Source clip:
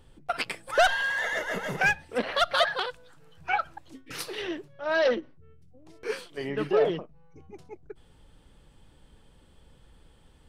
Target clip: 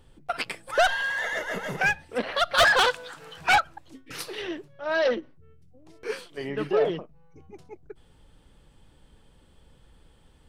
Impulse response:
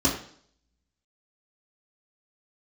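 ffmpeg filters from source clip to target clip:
-filter_complex "[0:a]asplit=3[link_01][link_02][link_03];[link_01]afade=type=out:start_time=2.57:duration=0.02[link_04];[link_02]asplit=2[link_05][link_06];[link_06]highpass=frequency=720:poles=1,volume=24dB,asoftclip=type=tanh:threshold=-11dB[link_07];[link_05][link_07]amix=inputs=2:normalize=0,lowpass=frequency=6500:poles=1,volume=-6dB,afade=type=in:start_time=2.57:duration=0.02,afade=type=out:start_time=3.58:duration=0.02[link_08];[link_03]afade=type=in:start_time=3.58:duration=0.02[link_09];[link_04][link_08][link_09]amix=inputs=3:normalize=0"

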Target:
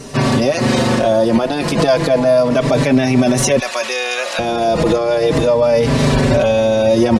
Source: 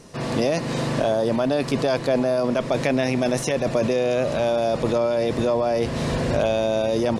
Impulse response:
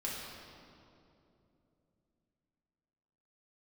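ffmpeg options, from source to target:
-filter_complex "[0:a]asettb=1/sr,asplit=3[link_01][link_02][link_03];[link_01]atrim=end=3.594[link_04];[link_02]atrim=start=3.59:end=4.39,asetpts=PTS-STARTPTS,afade=type=in:duration=0.004:curve=qsin,afade=type=out:start_time=0.796:duration=0.004:curve=qsin,highpass=1300[link_05];[link_03]atrim=start=4.386[link_06];[link_04][link_05]acrossfade=duration=0.004:curve1=hsin:curve2=qsin[link_07];[link_07][link_06]acrossfade=duration=0.004:curve1=qsin:curve2=hsin,alimiter=level_in=18dB:limit=-1dB:release=50:level=0:latency=1,asplit=2[link_08][link_09];[link_09]adelay=4.7,afreqshift=-0.33[link_10];[link_08][link_10]amix=inputs=2:normalize=1,volume=-1dB"

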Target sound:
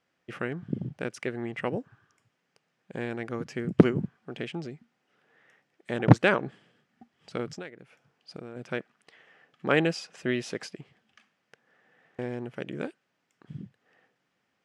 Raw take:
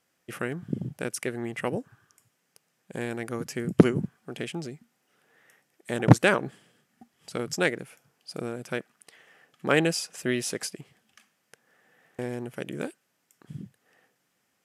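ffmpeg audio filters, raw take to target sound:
ffmpeg -i in.wav -filter_complex "[0:a]lowpass=4000,asplit=3[link_01][link_02][link_03];[link_01]afade=type=out:start_time=7.52:duration=0.02[link_04];[link_02]acompressor=threshold=-37dB:ratio=8,afade=type=in:start_time=7.52:duration=0.02,afade=type=out:start_time=8.55:duration=0.02[link_05];[link_03]afade=type=in:start_time=8.55:duration=0.02[link_06];[link_04][link_05][link_06]amix=inputs=3:normalize=0,volume=-1dB" out.wav

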